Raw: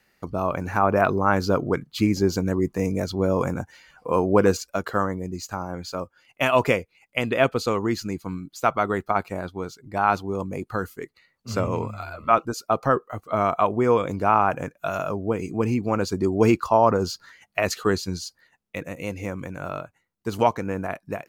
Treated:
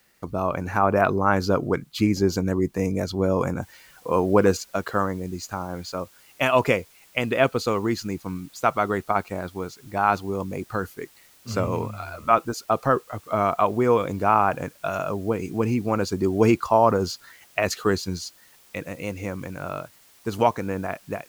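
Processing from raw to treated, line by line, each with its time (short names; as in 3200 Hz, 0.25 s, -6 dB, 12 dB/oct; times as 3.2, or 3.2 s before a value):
3.62 noise floor step -66 dB -55 dB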